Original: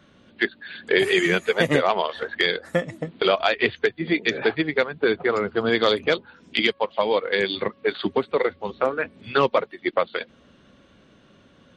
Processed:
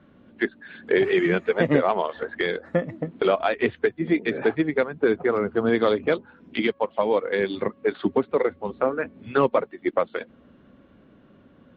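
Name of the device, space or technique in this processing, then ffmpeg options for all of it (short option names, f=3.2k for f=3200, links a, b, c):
phone in a pocket: -af "lowpass=3.2k,equalizer=f=260:t=o:w=0.68:g=4,highshelf=f=2.4k:g=-12"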